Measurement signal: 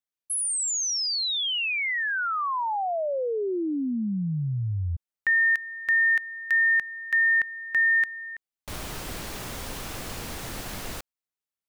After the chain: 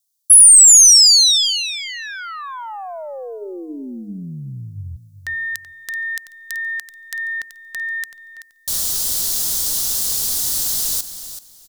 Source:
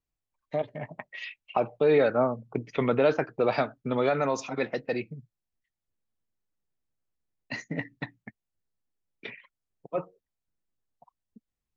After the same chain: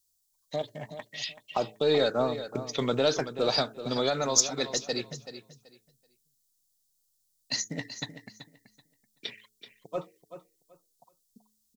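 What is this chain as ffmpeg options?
ffmpeg -i in.wav -filter_complex "[0:a]bandreject=frequency=107.7:width_type=h:width=4,bandreject=frequency=215.4:width_type=h:width=4,bandreject=frequency=323.1:width_type=h:width=4,bandreject=frequency=430.8:width_type=h:width=4,aexciter=amount=10.4:drive=6.5:freq=3600,aeval=exprs='1.06*(cos(1*acos(clip(val(0)/1.06,-1,1)))-cos(1*PI/2))+0.0422*(cos(2*acos(clip(val(0)/1.06,-1,1)))-cos(2*PI/2))+0.0133*(cos(8*acos(clip(val(0)/1.06,-1,1)))-cos(8*PI/2))':channel_layout=same,asplit=2[link_01][link_02];[link_02]aecho=0:1:381|762|1143:0.251|0.0527|0.0111[link_03];[link_01][link_03]amix=inputs=2:normalize=0,volume=-3dB" out.wav

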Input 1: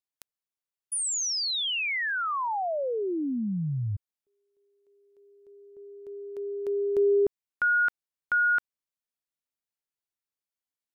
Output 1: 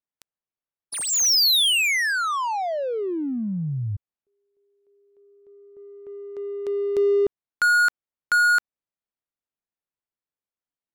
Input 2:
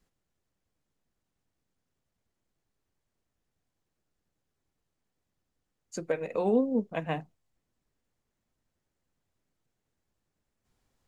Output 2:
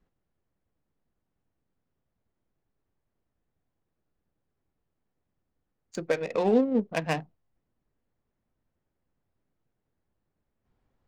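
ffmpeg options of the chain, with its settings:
ffmpeg -i in.wav -af "adynamicsmooth=sensitivity=7.5:basefreq=1400,highshelf=frequency=2500:gain=11.5,volume=2.5dB" out.wav

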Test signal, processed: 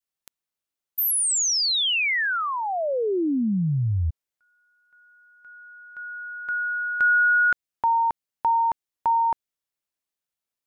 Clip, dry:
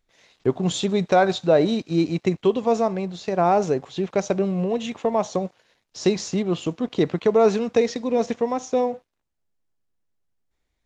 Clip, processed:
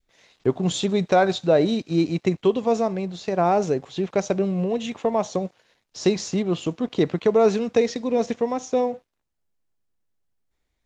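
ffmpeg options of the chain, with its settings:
ffmpeg -i in.wav -af "adynamicequalizer=threshold=0.02:dfrequency=1000:dqfactor=1.1:tfrequency=1000:tqfactor=1.1:attack=5:release=100:ratio=0.375:range=3:mode=cutabove:tftype=bell" out.wav

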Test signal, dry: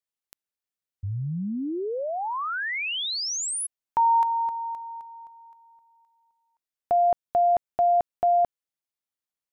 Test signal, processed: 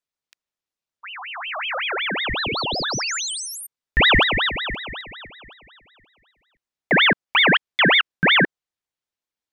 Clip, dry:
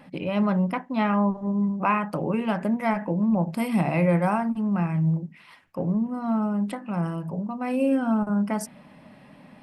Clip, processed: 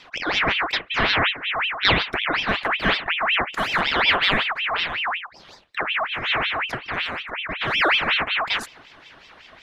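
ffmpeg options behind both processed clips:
ffmpeg -i in.wav -filter_complex "[0:a]aeval=exprs='0.335*(cos(1*acos(clip(val(0)/0.335,-1,1)))-cos(1*PI/2))+0.00376*(cos(3*acos(clip(val(0)/0.335,-1,1)))-cos(3*PI/2))+0.00237*(cos(6*acos(clip(val(0)/0.335,-1,1)))-cos(6*PI/2))':channel_layout=same,acrossover=split=240 6200:gain=0.251 1 0.251[link_01][link_02][link_03];[link_01][link_02][link_03]amix=inputs=3:normalize=0,aeval=exprs='val(0)*sin(2*PI*1900*n/s+1900*0.55/5.4*sin(2*PI*5.4*n/s))':channel_layout=same,volume=8dB" out.wav

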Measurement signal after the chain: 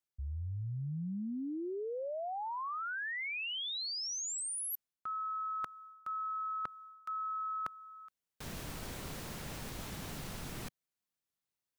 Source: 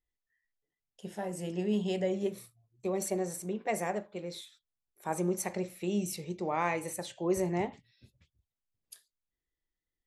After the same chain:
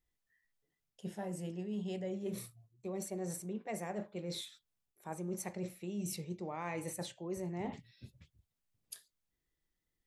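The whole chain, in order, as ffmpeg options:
ffmpeg -i in.wav -af "equalizer=frequency=150:width=0.82:gain=5.5,areverse,acompressor=threshold=-41dB:ratio=6,areverse,volume=3dB" out.wav

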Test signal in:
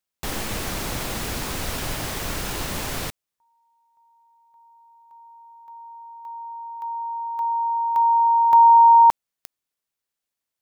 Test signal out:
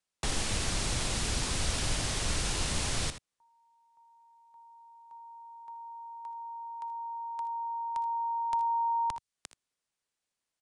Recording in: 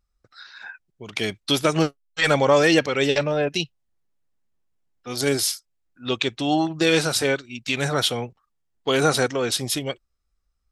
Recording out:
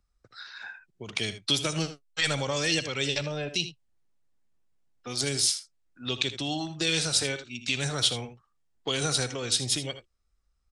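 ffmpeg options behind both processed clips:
ffmpeg -i in.wav -filter_complex "[0:a]aresample=22050,aresample=44100,asplit=2[link_01][link_02];[link_02]aecho=0:1:62|79:0.133|0.2[link_03];[link_01][link_03]amix=inputs=2:normalize=0,acrossover=split=130|2800[link_04][link_05][link_06];[link_05]acompressor=threshold=-45dB:ratio=2:attack=52:release=272:knee=2.83:detection=peak[link_07];[link_04][link_07][link_06]amix=inputs=3:normalize=0" out.wav

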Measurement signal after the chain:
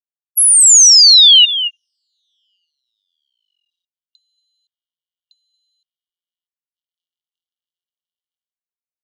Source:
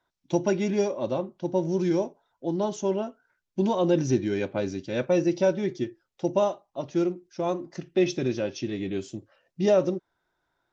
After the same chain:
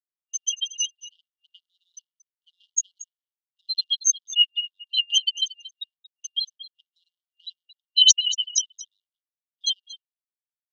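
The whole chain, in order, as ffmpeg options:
ffmpeg -i in.wav -filter_complex "[0:a]afftfilt=real='re*gte(hypot(re,im),0.0447)':imag='im*gte(hypot(re,im),0.0447)':win_size=1024:overlap=0.75,aecho=1:1:230:0.141,afreqshift=460,acrossover=split=190[link_01][link_02];[link_01]acrusher=bits=4:dc=4:mix=0:aa=0.000001[link_03];[link_03][link_02]amix=inputs=2:normalize=0,acrossover=split=170|3000[link_04][link_05][link_06];[link_05]acompressor=threshold=-26dB:ratio=10[link_07];[link_04][link_07][link_06]amix=inputs=3:normalize=0,lowshelf=frequency=430:gain=-4,afftfilt=real='re*(1-between(b*sr/4096,180,2800))':imag='im*(1-between(b*sr/4096,180,2800))':win_size=4096:overlap=0.75,dynaudnorm=framelen=530:gausssize=7:maxgain=5dB,aemphasis=mode=reproduction:type=50kf,alimiter=level_in=27.5dB:limit=-1dB:release=50:level=0:latency=1,afftfilt=real='re*gte(b*sr/1024,780*pow(3000/780,0.5+0.5*sin(2*PI*4*pts/sr)))':imag='im*gte(b*sr/1024,780*pow(3000/780,0.5+0.5*sin(2*PI*4*pts/sr)))':win_size=1024:overlap=0.75,volume=-1dB" out.wav

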